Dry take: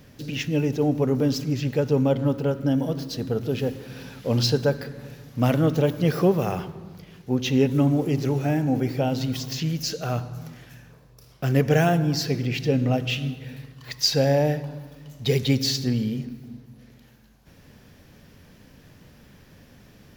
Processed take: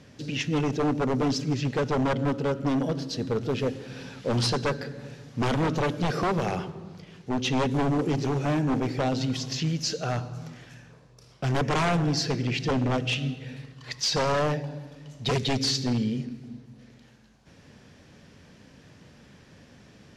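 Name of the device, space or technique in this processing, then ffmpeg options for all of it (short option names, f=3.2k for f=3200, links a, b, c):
synthesiser wavefolder: -af "highpass=f=94:p=1,aeval=exprs='0.112*(abs(mod(val(0)/0.112+3,4)-2)-1)':c=same,lowpass=f=8.8k:w=0.5412,lowpass=f=8.8k:w=1.3066"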